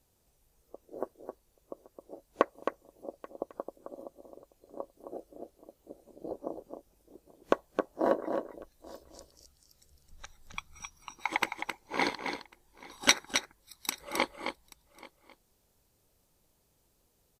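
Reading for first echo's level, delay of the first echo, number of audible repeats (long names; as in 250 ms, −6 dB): −7.0 dB, 265 ms, 3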